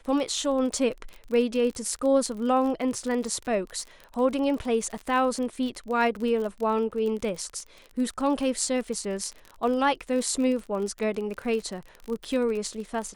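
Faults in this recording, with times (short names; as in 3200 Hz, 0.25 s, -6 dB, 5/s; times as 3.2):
crackle 40/s -32 dBFS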